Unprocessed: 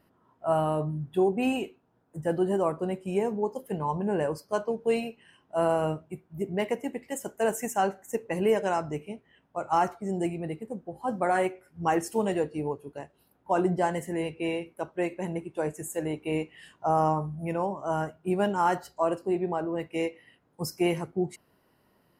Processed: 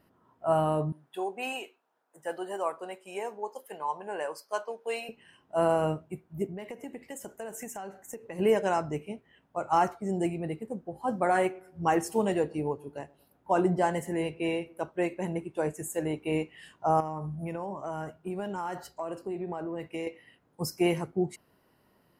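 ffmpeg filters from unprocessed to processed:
-filter_complex "[0:a]asettb=1/sr,asplit=3[a][b][c];[a]atrim=end=0.924[d];[b]atrim=start=0.92:end=5.09,asetpts=PTS-STARTPTS,afade=t=in:d=0.004:c=qsin,afade=t=out:st=4.166:d=0.004:c=qsin,highpass=700[e];[c]atrim=start=5.086[f];[d][e]acrossfade=d=0.004:c1=hsin:c2=qsin[g];[g][f]acrossfade=d=0.004:c1=qsin:c2=hsin,asplit=3[h][i][j];[h]afade=t=out:st=6.46:d=0.02[k];[i]acompressor=threshold=-36dB:ratio=8:attack=3.2:release=140:knee=1:detection=peak,afade=t=in:st=6.46:d=0.02,afade=t=out:st=8.38:d=0.02[l];[j]afade=t=in:st=8.38:d=0.02[m];[k][l][m]amix=inputs=3:normalize=0,asettb=1/sr,asplit=3[n][o][p];[n]atrim=end=11.224[q];[o]atrim=start=11.22:end=14.91,asetpts=PTS-STARTPTS,afade=t=in:d=0.004:c=qsin,afade=t=out:st=3.686:d=0.004:c=qsin,asplit=2[r][s];[s]adelay=115,lowpass=f=1k:p=1,volume=-23.5dB,asplit=2[t][u];[u]adelay=115,lowpass=f=1k:p=1,volume=0.53,asplit=2[v][w];[w]adelay=115,lowpass=f=1k:p=1,volume=0.53[x];[r][t][v][x]amix=inputs=4:normalize=0,atrim=end_sample=162729[y];[p]atrim=start=14.906[z];[q][y]acrossfade=d=0.004:c1=hsin:c2=qsin[aa];[aa][z]acrossfade=d=0.004:c1=qsin:c2=hsin,asettb=1/sr,asplit=3[ab][ac][ad];[ab]atrim=end=17.004[ae];[ac]atrim=start=17:end=20.07,asetpts=PTS-STARTPTS,afade=t=in:d=0.004:c=qsin,afade=t=out:st=3.066:d=0.004:c=qsin,acompressor=threshold=-31dB:ratio=6:attack=3.2:release=140:knee=1:detection=peak[af];[ad]atrim=start=20.066[ag];[ae][af]acrossfade=d=0.004:c1=hsin:c2=qsin[ah];[ah][ag]acrossfade=d=0.004:c1=qsin:c2=hsin"

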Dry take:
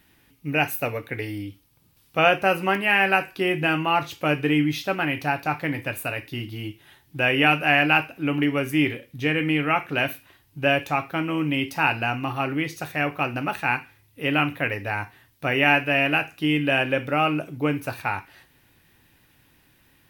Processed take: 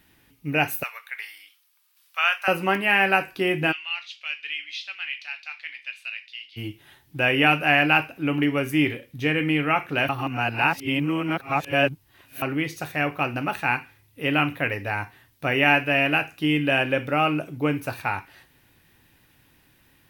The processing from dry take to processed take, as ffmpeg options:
-filter_complex "[0:a]asettb=1/sr,asplit=3[a][b][c];[a]atrim=end=0.834[d];[b]atrim=start=0.83:end=2.48,asetpts=PTS-STARTPTS,afade=t=in:d=0.004:c=qsin,afade=t=out:st=1.646:d=0.004:c=qsin,highpass=f=1.1k:w=0.5412,highpass=f=1.1k:w=1.3066[e];[c]atrim=start=2.476[f];[d][e]acrossfade=d=0.004:c1=hsin:c2=qsin[g];[g][f]acrossfade=d=0.004:c1=qsin:c2=hsin,asplit=3[h][i][j];[h]afade=t=out:st=3.71:d=0.02[k];[i]asuperpass=centerf=3400:order=4:qfactor=1.2,afade=t=in:st=3.71:d=0.02,afade=t=out:st=6.56:d=0.02[l];[j]afade=t=in:st=6.56:d=0.02[m];[k][l][m]amix=inputs=3:normalize=0,asplit=3[n][o][p];[n]atrim=end=10.092[q];[o]atrim=start=10.088:end=12.422,asetpts=PTS-STARTPTS,areverse[r];[p]atrim=start=12.418[s];[q][r]acrossfade=d=0.004:c1=hsin:c2=hsin[t];[t][s]acrossfade=d=0.004:c1=hsin:c2=hsin"

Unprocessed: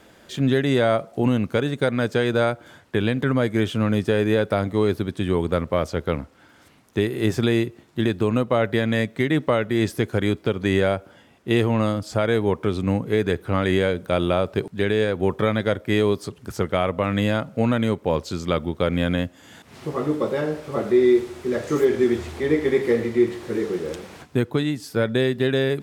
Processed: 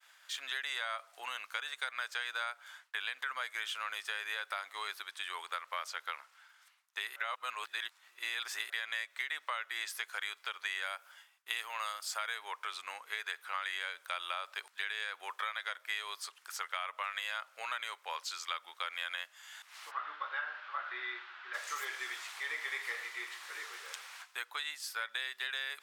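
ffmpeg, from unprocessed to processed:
-filter_complex "[0:a]asettb=1/sr,asplit=3[a][b][c];[a]atrim=end=10.824[d];[b]atrim=start=10.82:end=12.35,asetpts=PTS-STARTPTS,afade=t=in:d=0.004:c=qsin,afade=t=out:st=1.526:d=0.004:c=qsin,highshelf=f=9.2k:g=10[e];[c]atrim=start=12.346[f];[d][e]acrossfade=d=0.004:c1=hsin:c2=qsin[g];[g][f]acrossfade=d=0.004:c1=qsin:c2=hsin,asplit=3[h][i][j];[h]afade=t=out:st=19.9:d=0.02[k];[i]highpass=140,equalizer=f=180:t=q:w=4:g=6,equalizer=f=470:t=q:w=4:g=-9,equalizer=f=1.5k:t=q:w=4:g=8,equalizer=f=2.2k:t=q:w=4:g=-4,lowpass=f=3.4k:w=0.5412,lowpass=f=3.4k:w=1.3066,afade=t=in:st=19.9:d=0.02,afade=t=out:st=21.53:d=0.02[l];[j]afade=t=in:st=21.53:d=0.02[m];[k][l][m]amix=inputs=3:normalize=0,asplit=3[n][o][p];[n]atrim=end=7.162[q];[o]atrim=start=7.158:end=8.702,asetpts=PTS-STARTPTS,areverse[r];[p]atrim=start=8.698[s];[q][r]acrossfade=d=0.004:c1=hsin:c2=hsin[t];[t][s]acrossfade=d=0.004:c1=hsin:c2=hsin,agate=range=-33dB:threshold=-47dB:ratio=3:detection=peak,highpass=f=1.1k:w=0.5412,highpass=f=1.1k:w=1.3066,acompressor=threshold=-31dB:ratio=5,volume=-2.5dB"

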